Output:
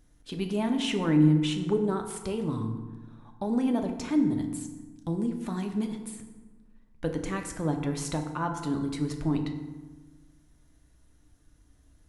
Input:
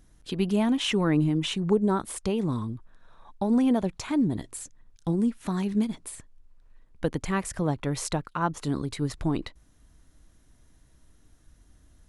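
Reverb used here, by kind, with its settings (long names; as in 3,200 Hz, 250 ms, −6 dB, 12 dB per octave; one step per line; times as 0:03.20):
feedback delay network reverb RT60 1.3 s, low-frequency decay 1.3×, high-frequency decay 0.55×, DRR 4 dB
level −4.5 dB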